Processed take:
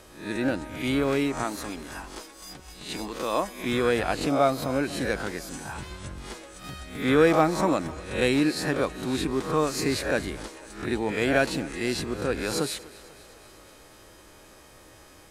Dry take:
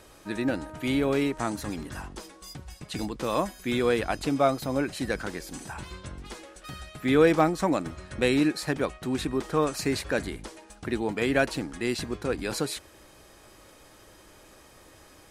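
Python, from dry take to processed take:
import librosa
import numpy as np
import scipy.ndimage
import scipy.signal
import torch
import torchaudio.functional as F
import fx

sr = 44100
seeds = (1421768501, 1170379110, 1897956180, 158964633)

y = fx.spec_swells(x, sr, rise_s=0.48)
y = fx.peak_eq(y, sr, hz=110.0, db=-12.0, octaves=1.8, at=(1.43, 3.64))
y = fx.echo_thinned(y, sr, ms=248, feedback_pct=68, hz=220.0, wet_db=-20.0)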